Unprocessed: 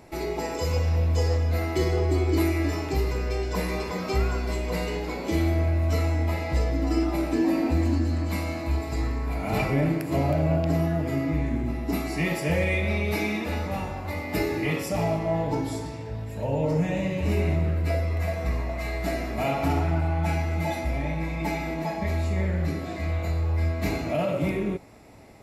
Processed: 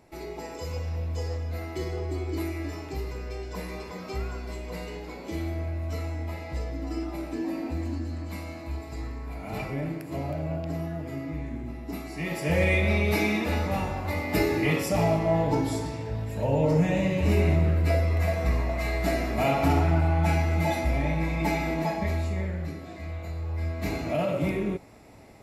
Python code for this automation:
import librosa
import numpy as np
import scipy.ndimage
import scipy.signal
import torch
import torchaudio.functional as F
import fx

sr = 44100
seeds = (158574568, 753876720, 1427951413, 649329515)

y = fx.gain(x, sr, db=fx.line((12.14, -8.0), (12.64, 2.0), (21.84, 2.0), (22.77, -8.0), (23.32, -8.0), (24.13, -1.0)))